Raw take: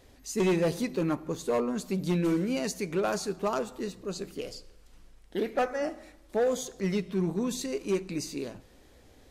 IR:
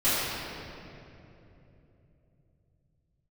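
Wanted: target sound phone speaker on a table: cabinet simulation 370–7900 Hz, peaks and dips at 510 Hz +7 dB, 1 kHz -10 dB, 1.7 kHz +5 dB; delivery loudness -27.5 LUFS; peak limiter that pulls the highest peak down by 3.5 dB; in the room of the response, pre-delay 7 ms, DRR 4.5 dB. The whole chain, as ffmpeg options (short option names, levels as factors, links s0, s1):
-filter_complex "[0:a]alimiter=limit=0.0668:level=0:latency=1,asplit=2[s0][s1];[1:a]atrim=start_sample=2205,adelay=7[s2];[s1][s2]afir=irnorm=-1:irlink=0,volume=0.1[s3];[s0][s3]amix=inputs=2:normalize=0,highpass=f=370:w=0.5412,highpass=f=370:w=1.3066,equalizer=f=510:t=q:w=4:g=7,equalizer=f=1000:t=q:w=4:g=-10,equalizer=f=1700:t=q:w=4:g=5,lowpass=f=7900:w=0.5412,lowpass=f=7900:w=1.3066,volume=1.58"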